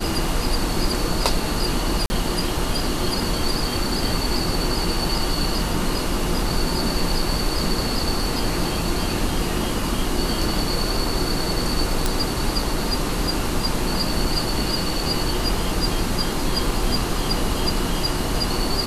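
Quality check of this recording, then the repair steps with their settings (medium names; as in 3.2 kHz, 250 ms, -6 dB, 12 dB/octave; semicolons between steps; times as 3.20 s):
2.06–2.10 s: dropout 40 ms
12.06 s: pop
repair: de-click; interpolate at 2.06 s, 40 ms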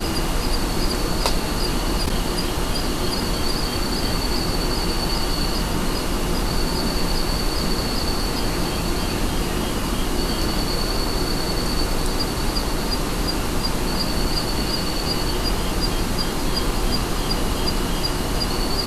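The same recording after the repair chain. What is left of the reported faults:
nothing left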